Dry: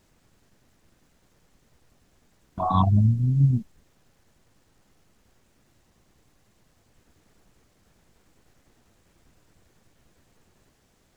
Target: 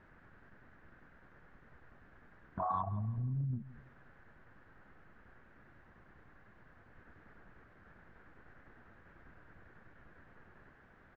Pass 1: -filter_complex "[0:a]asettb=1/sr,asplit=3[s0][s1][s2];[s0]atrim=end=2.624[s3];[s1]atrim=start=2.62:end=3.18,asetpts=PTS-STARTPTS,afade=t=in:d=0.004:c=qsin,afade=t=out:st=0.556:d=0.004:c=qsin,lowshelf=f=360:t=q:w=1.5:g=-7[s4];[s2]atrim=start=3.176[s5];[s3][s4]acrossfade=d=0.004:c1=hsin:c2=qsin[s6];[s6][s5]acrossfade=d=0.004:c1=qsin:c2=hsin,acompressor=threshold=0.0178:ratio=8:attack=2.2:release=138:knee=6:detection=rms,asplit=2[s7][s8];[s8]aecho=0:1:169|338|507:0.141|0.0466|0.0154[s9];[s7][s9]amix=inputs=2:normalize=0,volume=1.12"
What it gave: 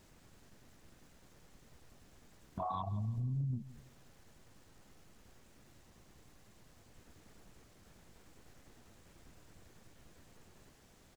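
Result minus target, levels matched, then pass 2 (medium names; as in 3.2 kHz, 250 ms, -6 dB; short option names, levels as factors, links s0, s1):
2 kHz band -7.0 dB
-filter_complex "[0:a]asettb=1/sr,asplit=3[s0][s1][s2];[s0]atrim=end=2.624[s3];[s1]atrim=start=2.62:end=3.18,asetpts=PTS-STARTPTS,afade=t=in:d=0.004:c=qsin,afade=t=out:st=0.556:d=0.004:c=qsin,lowshelf=f=360:t=q:w=1.5:g=-7[s4];[s2]atrim=start=3.176[s5];[s3][s4]acrossfade=d=0.004:c1=hsin:c2=qsin[s6];[s6][s5]acrossfade=d=0.004:c1=qsin:c2=hsin,acompressor=threshold=0.0178:ratio=8:attack=2.2:release=138:knee=6:detection=rms,lowpass=f=1600:t=q:w=3.7,asplit=2[s7][s8];[s8]aecho=0:1:169|338|507:0.141|0.0466|0.0154[s9];[s7][s9]amix=inputs=2:normalize=0,volume=1.12"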